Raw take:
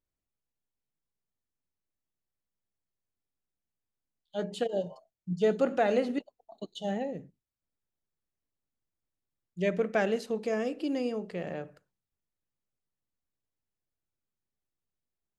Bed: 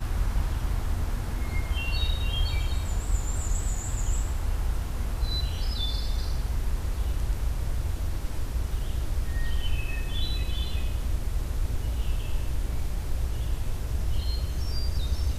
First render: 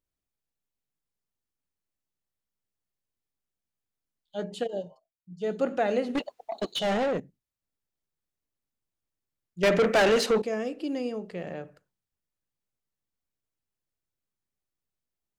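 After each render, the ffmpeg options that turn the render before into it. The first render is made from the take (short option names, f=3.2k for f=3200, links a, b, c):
-filter_complex "[0:a]asettb=1/sr,asplit=3[a][b][c];[a]atrim=end=6.154[d];[b]atrim=start=6.15:end=7.2,asetpts=PTS-STARTPTS,afade=t=in:d=0.004:c=qsin,afade=t=out:st=1.046:d=0.004:c=qsin,asplit=2[e][f];[f]highpass=f=720:p=1,volume=27dB,asoftclip=type=tanh:threshold=-19dB[g];[e][g]amix=inputs=2:normalize=0,lowpass=f=4.4k:p=1,volume=-6dB[h];[c]atrim=start=7.196[i];[d][h]acrossfade=d=0.004:c1=hsin:c2=qsin[j];[j][i]acrossfade=d=0.004:c1=qsin:c2=hsin,asettb=1/sr,asplit=3[k][l][m];[k]atrim=end=9.634[n];[l]atrim=start=9.63:end=10.42,asetpts=PTS-STARTPTS,afade=t=in:d=0.004:c=qsin,afade=t=out:st=0.786:d=0.004:c=qsin,asplit=2[o][p];[p]highpass=f=720:p=1,volume=28dB,asoftclip=type=tanh:threshold=-13.5dB[q];[o][q]amix=inputs=2:normalize=0,lowpass=f=4.8k:p=1,volume=-6dB[r];[m]atrim=start=10.416[s];[n][r]acrossfade=d=0.004:c1=hsin:c2=qsin[t];[t][s]acrossfade=d=0.004:c1=qsin:c2=hsin,asplit=3[u][v][w];[u]atrim=end=5,asetpts=PTS-STARTPTS,afade=t=out:st=4.68:d=0.32:silence=0.223872[x];[v]atrim=start=5:end=5.32,asetpts=PTS-STARTPTS,volume=-13dB[y];[w]atrim=start=5.32,asetpts=PTS-STARTPTS,afade=t=in:d=0.32:silence=0.223872[z];[x][y][z]concat=n=3:v=0:a=1"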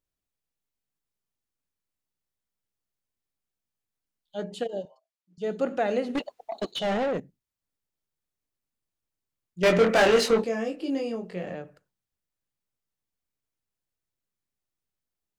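-filter_complex "[0:a]asettb=1/sr,asplit=3[a][b][c];[a]atrim=end=4.854[d];[b]atrim=start=4.85:end=5.38,asetpts=PTS-STARTPTS,afade=t=in:d=0.004:c=qsin,afade=t=out:st=0.526:d=0.004:c=qsin,highpass=520,lowpass=7.7k[e];[c]atrim=start=5.376[f];[d][e]acrossfade=d=0.004:c1=hsin:c2=qsin[g];[g][f]acrossfade=d=0.004:c1=qsin:c2=hsin,asettb=1/sr,asplit=3[h][i][j];[h]atrim=end=6.714[k];[i]atrim=start=6.71:end=7.14,asetpts=PTS-STARTPTS,afade=t=in:d=0.004:c=qsin,afade=t=out:st=0.426:d=0.004:c=qsin,highshelf=f=5.5k:g=-6.5[l];[j]atrim=start=7.136[m];[k][l]acrossfade=d=0.004:c1=hsin:c2=qsin[n];[n][m]acrossfade=d=0.004:c1=qsin:c2=hsin,asettb=1/sr,asplit=3[o][p][q];[o]atrim=end=9.594[r];[p]atrim=start=9.59:end=11.55,asetpts=PTS-STARTPTS,afade=t=in:d=0.004:c=qsin,afade=t=out:st=1.956:d=0.004:c=qsin,asplit=2[s][t];[t]adelay=22,volume=-3dB[u];[s][u]amix=inputs=2:normalize=0,atrim=end_sample=86436[v];[q]atrim=start=11.546[w];[r][v]acrossfade=d=0.004:c1=hsin:c2=qsin[x];[x][w]acrossfade=d=0.004:c1=qsin:c2=hsin"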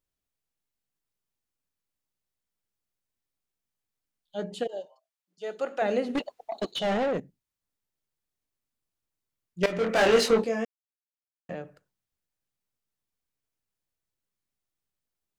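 -filter_complex "[0:a]asettb=1/sr,asplit=3[a][b][c];[a]atrim=end=4.674[d];[b]atrim=start=4.67:end=5.82,asetpts=PTS-STARTPTS,afade=t=in:d=0.004:c=qsin,afade=t=out:st=1.146:d=0.004:c=qsin,highpass=550[e];[c]atrim=start=5.816[f];[d][e]acrossfade=d=0.004:c1=hsin:c2=qsin[g];[g][f]acrossfade=d=0.004:c1=qsin:c2=hsin,asplit=4[h][i][j][k];[h]atrim=end=9.66,asetpts=PTS-STARTPTS,afade=t=out:st=9.656:d=0.004:c=hsin:silence=0.158489[l];[i]atrim=start=9.66:end=10.65,asetpts=PTS-STARTPTS,afade=t=in:d=0.49:silence=0.158489,afade=t=out:st=0.986:d=0.004:c=hsin[m];[j]atrim=start=10.65:end=11.49,asetpts=PTS-STARTPTS,volume=0[n];[k]atrim=start=11.49,asetpts=PTS-STARTPTS,afade=t=in:d=0.004:c=hsin[o];[l][m][n][o]concat=n=4:v=0:a=1"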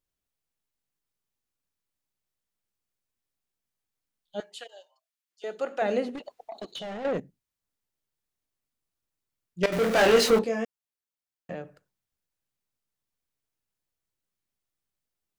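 -filter_complex "[0:a]asettb=1/sr,asplit=3[a][b][c];[a]atrim=end=4.404[d];[b]atrim=start=4.4:end=5.44,asetpts=PTS-STARTPTS,afade=t=in:d=0.004:c=qsin,afade=t=out:st=1.036:d=0.004:c=qsin,highpass=1.3k[e];[c]atrim=start=5.436[f];[d][e]acrossfade=d=0.004:c1=hsin:c2=qsin[g];[g][f]acrossfade=d=0.004:c1=qsin:c2=hsin,asettb=1/sr,asplit=3[h][i][j];[h]atrim=end=6.094[k];[i]atrim=start=6.09:end=7.05,asetpts=PTS-STARTPTS,afade=t=in:d=0.004:c=qsin,afade=t=out:st=0.956:d=0.004:c=qsin,acompressor=threshold=-35dB:ratio=6:attack=3.2:release=140:knee=1:detection=peak[l];[j]atrim=start=7.046[m];[k][l]acrossfade=d=0.004:c1=hsin:c2=qsin[n];[n][m]acrossfade=d=0.004:c1=qsin:c2=hsin,asettb=1/sr,asplit=3[o][p][q];[o]atrim=end=9.724[r];[p]atrim=start=9.72:end=10.39,asetpts=PTS-STARTPTS,afade=t=in:d=0.004:c=qsin,afade=t=out:st=0.666:d=0.004:c=qsin,aeval=exprs='val(0)+0.5*0.0376*sgn(val(0))':c=same[s];[q]atrim=start=10.386[t];[r][s]acrossfade=d=0.004:c1=hsin:c2=qsin[u];[u][t]acrossfade=d=0.004:c1=qsin:c2=hsin"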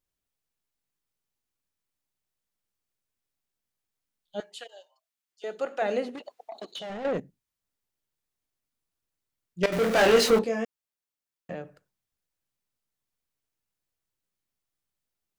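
-filter_complex "[0:a]asettb=1/sr,asplit=3[a][b][c];[a]atrim=end=5.664[d];[b]atrim=start=5.66:end=6.9,asetpts=PTS-STARTPTS,afade=t=in:d=0.004:c=qsin,afade=t=out:st=1.236:d=0.004:c=qsin,highpass=f=260:p=1[e];[c]atrim=start=6.896[f];[d][e]acrossfade=d=0.004:c1=hsin:c2=qsin[g];[g][f]acrossfade=d=0.004:c1=qsin:c2=hsin"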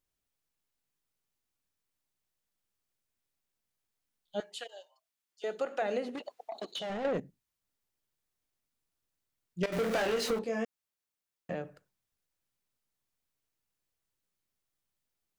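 -af "acompressor=threshold=-28dB:ratio=12"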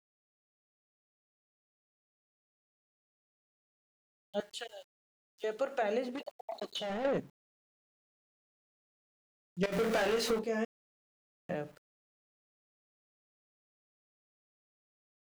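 -af "aeval=exprs='val(0)*gte(abs(val(0)),0.00133)':c=same"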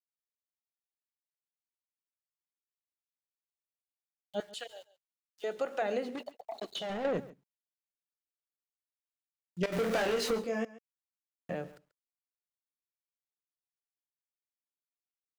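-af "aecho=1:1:137:0.112"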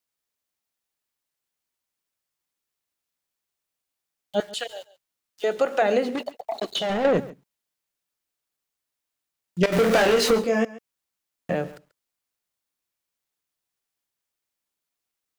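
-af "volume=11.5dB"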